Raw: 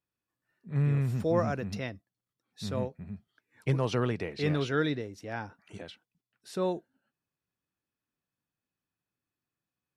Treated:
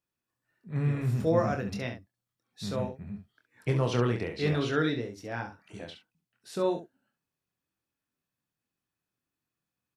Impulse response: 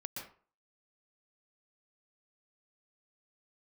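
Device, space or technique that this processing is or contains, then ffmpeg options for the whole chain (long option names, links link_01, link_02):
slapback doubling: -filter_complex "[0:a]asplit=3[link_01][link_02][link_03];[link_02]adelay=25,volume=-5.5dB[link_04];[link_03]adelay=68,volume=-8.5dB[link_05];[link_01][link_04][link_05]amix=inputs=3:normalize=0"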